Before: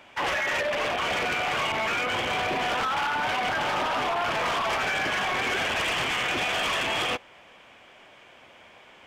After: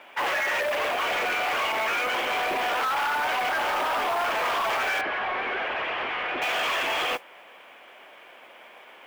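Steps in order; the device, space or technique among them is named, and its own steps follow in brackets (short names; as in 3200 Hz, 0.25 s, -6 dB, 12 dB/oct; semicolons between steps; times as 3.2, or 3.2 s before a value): carbon microphone (BPF 370–3200 Hz; soft clip -25 dBFS, distortion -17 dB; modulation noise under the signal 21 dB); 5.01–6.42 air absorption 340 m; gain +4 dB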